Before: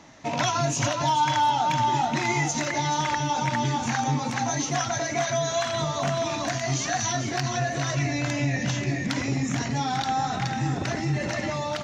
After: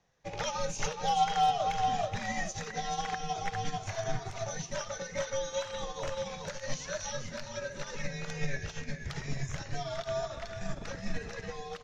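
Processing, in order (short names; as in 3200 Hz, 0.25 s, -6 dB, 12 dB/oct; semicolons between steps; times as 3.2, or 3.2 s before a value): frequency shift -130 Hz; spectral repair 3.93–4.43, 1000–2000 Hz; in parallel at -1.5 dB: limiter -19.5 dBFS, peak gain reduction 8.5 dB; on the sum: upward expander 2.5:1, over -31 dBFS; gain -6 dB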